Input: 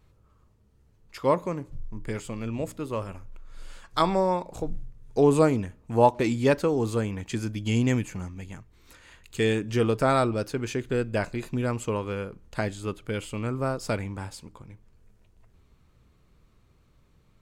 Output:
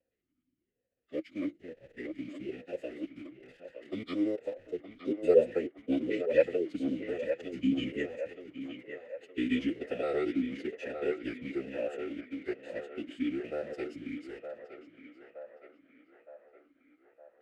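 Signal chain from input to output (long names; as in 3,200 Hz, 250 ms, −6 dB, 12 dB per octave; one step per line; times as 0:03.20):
slices reordered back to front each 109 ms, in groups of 2
in parallel at −4 dB: bit reduction 6 bits
on the sum: feedback echo with a band-pass in the loop 916 ms, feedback 71%, band-pass 1,000 Hz, level −5.5 dB
phase-vocoder pitch shift with formants kept −10 semitones
formant filter swept between two vowels e-i 1.1 Hz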